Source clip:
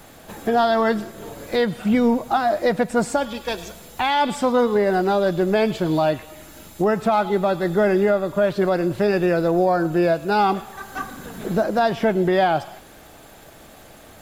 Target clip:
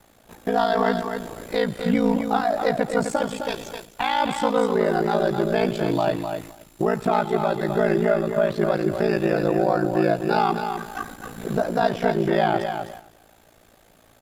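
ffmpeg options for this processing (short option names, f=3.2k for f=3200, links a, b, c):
-af "aecho=1:1:257|514|771:0.447|0.0983|0.0216,agate=range=-8dB:threshold=-35dB:ratio=16:detection=peak,aeval=exprs='val(0)*sin(2*PI*28*n/s)':c=same"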